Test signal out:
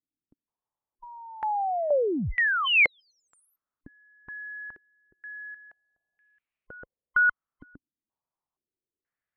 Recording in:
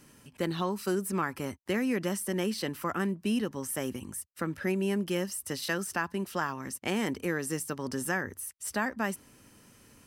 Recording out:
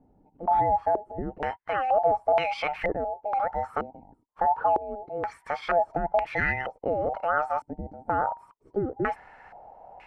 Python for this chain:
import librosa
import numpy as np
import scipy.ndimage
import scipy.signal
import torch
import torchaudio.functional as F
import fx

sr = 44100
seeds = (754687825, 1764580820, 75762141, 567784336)

p1 = fx.band_invert(x, sr, width_hz=1000)
p2 = fx.low_shelf(p1, sr, hz=180.0, db=5.5)
p3 = fx.over_compress(p2, sr, threshold_db=-33.0, ratio=-1.0)
p4 = p2 + (p3 * 10.0 ** (2.0 / 20.0))
p5 = fx.filter_held_lowpass(p4, sr, hz=2.1, low_hz=280.0, high_hz=2400.0)
y = p5 * 10.0 ** (-4.5 / 20.0)